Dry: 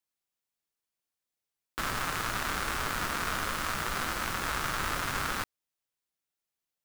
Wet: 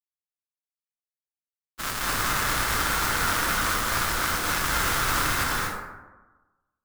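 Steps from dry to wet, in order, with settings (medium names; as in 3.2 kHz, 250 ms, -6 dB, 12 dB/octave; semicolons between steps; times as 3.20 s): expander -26 dBFS; treble shelf 3.4 kHz +8.5 dB; reverberation RT60 1.2 s, pre-delay 207 ms, DRR -3.5 dB; trim +5 dB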